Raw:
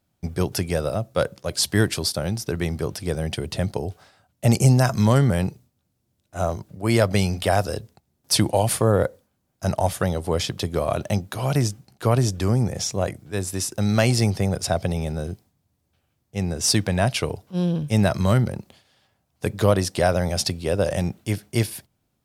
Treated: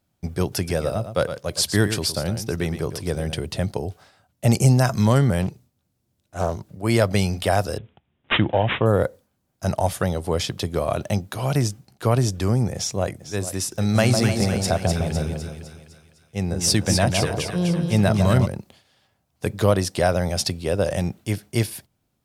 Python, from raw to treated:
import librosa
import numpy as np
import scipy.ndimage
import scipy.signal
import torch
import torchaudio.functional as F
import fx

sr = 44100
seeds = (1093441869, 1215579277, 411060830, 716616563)

y = fx.echo_single(x, sr, ms=114, db=-10.0, at=(0.56, 3.43))
y = fx.doppler_dist(y, sr, depth_ms=0.42, at=(5.42, 6.68))
y = fx.resample_bad(y, sr, factor=6, down='none', up='filtered', at=(7.78, 8.86))
y = fx.echo_throw(y, sr, start_s=12.74, length_s=0.67, ms=450, feedback_pct=15, wet_db=-13.0)
y = fx.echo_split(y, sr, split_hz=1200.0, low_ms=153, high_ms=253, feedback_pct=52, wet_db=-4.5, at=(13.94, 18.45), fade=0.02)